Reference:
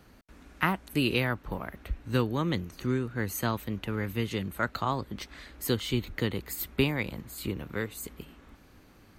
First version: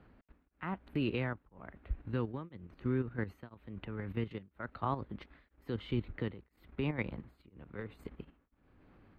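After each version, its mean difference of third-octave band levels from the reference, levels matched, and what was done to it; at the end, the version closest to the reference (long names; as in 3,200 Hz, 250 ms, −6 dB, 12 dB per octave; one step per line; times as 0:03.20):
8.5 dB: output level in coarse steps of 10 dB
high-frequency loss of the air 460 metres
tremolo along a rectified sine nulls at 1 Hz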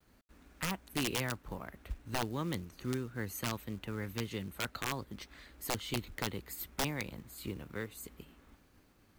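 3.5 dB: downward expander −53 dBFS
log-companded quantiser 6 bits
wrap-around overflow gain 17.5 dB
level −7.5 dB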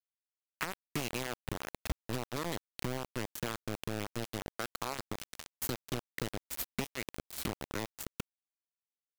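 12.5 dB: low-shelf EQ 270 Hz +4 dB
downward compressor 10 to 1, threshold −38 dBFS, peak gain reduction 20.5 dB
bit-depth reduction 6 bits, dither none
level +3.5 dB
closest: second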